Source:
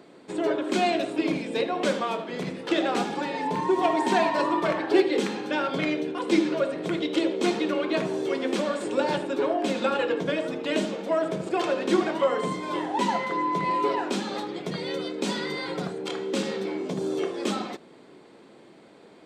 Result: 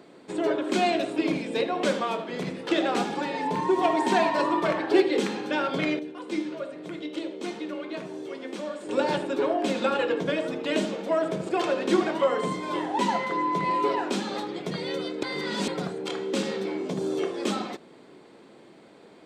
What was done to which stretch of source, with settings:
5.99–8.89 resonator 300 Hz, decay 0.38 s, mix 70%
15.23–15.68 reverse

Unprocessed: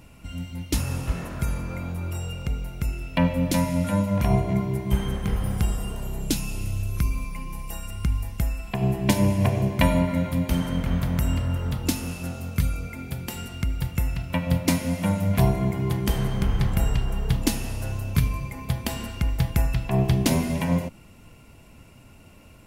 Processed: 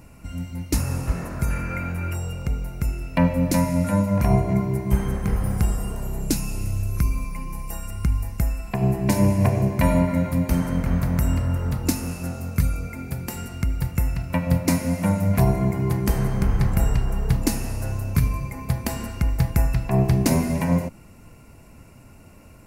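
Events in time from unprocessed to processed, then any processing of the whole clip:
1.5–2.14 spectral gain 1300–3200 Hz +9 dB
whole clip: bell 3300 Hz -12.5 dB 0.49 oct; maximiser +8.5 dB; gain -6 dB

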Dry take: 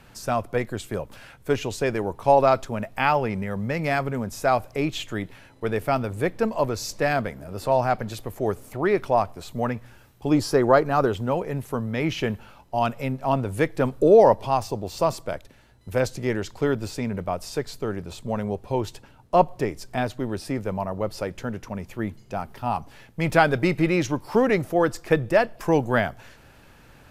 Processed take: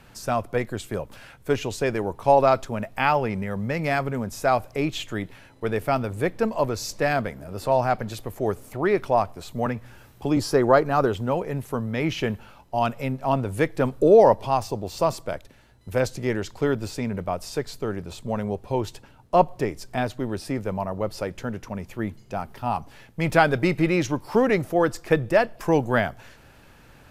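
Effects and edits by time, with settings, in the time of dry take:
9.66–10.37 three-band squash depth 40%

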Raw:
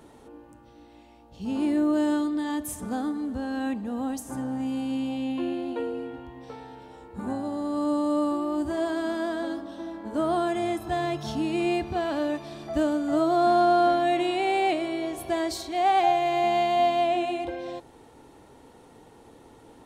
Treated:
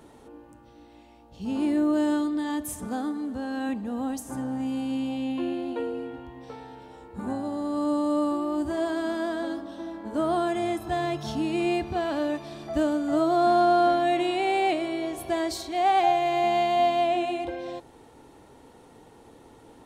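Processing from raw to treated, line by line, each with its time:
2.87–3.69 HPF 140 Hz 6 dB/oct

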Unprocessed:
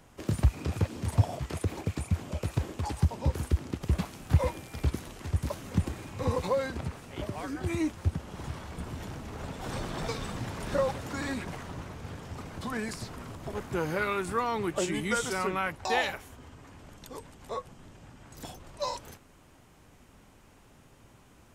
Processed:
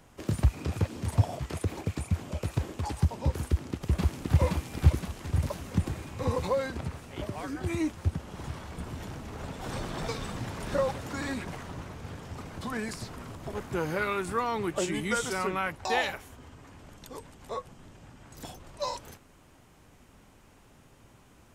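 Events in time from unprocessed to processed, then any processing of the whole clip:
3.5–4.4 echo throw 0.52 s, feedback 50%, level -0.5 dB

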